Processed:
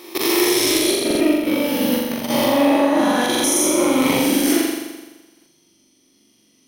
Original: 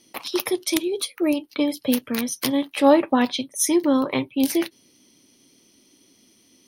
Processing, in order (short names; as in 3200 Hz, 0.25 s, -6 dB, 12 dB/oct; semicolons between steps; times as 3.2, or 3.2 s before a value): spectral swells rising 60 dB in 2.79 s; 0.91–3.4 bell 8200 Hz -9.5 dB 1.9 oct; level quantiser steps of 21 dB; flange 0.33 Hz, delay 5.4 ms, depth 4 ms, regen -80%; flutter echo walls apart 7.3 m, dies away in 1.2 s; stuck buffer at 1.06/3.3/5.32, samples 2048, times 2; gain +5 dB